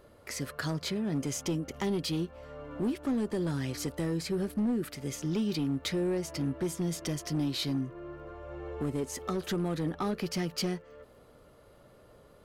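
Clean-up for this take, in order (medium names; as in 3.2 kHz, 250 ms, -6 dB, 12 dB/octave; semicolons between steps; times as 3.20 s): clip repair -25 dBFS; de-click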